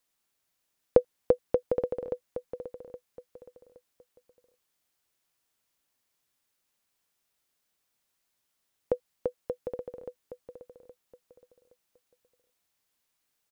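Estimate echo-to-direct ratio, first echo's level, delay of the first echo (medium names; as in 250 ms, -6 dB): -10.5 dB, -11.0 dB, 819 ms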